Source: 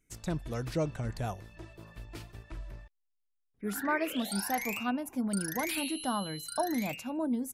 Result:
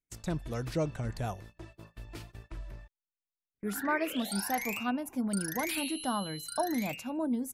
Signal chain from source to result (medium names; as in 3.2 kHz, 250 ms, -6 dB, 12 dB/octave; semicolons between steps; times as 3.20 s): gate -49 dBFS, range -20 dB